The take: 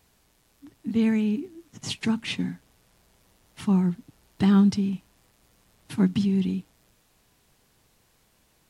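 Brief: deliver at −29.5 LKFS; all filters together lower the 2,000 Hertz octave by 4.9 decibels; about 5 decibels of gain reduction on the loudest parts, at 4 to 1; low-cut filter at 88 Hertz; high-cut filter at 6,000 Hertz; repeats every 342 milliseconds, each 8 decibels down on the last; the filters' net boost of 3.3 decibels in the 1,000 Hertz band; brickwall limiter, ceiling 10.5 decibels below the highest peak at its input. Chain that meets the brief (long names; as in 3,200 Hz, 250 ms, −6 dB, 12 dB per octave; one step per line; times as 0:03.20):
high-pass filter 88 Hz
low-pass filter 6,000 Hz
parametric band 1,000 Hz +6 dB
parametric band 2,000 Hz −8 dB
downward compressor 4 to 1, threshold −21 dBFS
brickwall limiter −23.5 dBFS
repeating echo 342 ms, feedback 40%, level −8 dB
level +4 dB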